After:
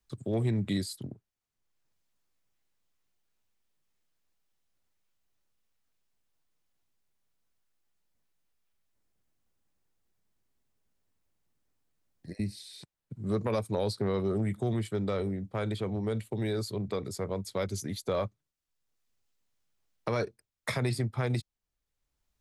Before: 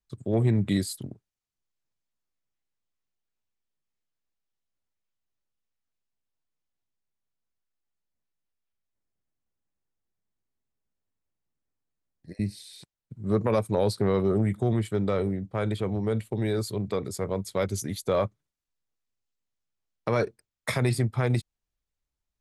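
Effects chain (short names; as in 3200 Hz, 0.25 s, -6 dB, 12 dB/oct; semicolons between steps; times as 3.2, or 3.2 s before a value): dynamic EQ 4700 Hz, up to +5 dB, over -50 dBFS, Q 1.4; three-band squash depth 40%; gain -5 dB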